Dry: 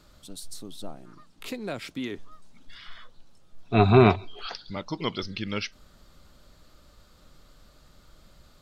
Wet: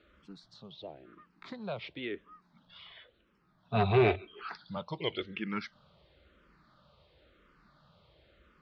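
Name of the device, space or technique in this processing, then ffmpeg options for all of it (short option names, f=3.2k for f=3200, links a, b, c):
barber-pole phaser into a guitar amplifier: -filter_complex "[0:a]asplit=2[a][b];[b]afreqshift=-0.96[c];[a][c]amix=inputs=2:normalize=1,asoftclip=type=tanh:threshold=-16dB,highpass=79,equalizer=f=100:t=q:w=4:g=-7,equalizer=f=260:t=q:w=4:g=-7,equalizer=f=750:t=q:w=4:g=-3,lowpass=f=3.5k:w=0.5412,lowpass=f=3.5k:w=1.3066"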